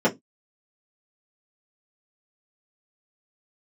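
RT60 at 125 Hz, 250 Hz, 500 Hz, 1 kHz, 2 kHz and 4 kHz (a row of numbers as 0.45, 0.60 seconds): 0.25, 0.25, 0.20, 0.10, 0.15, 0.15 seconds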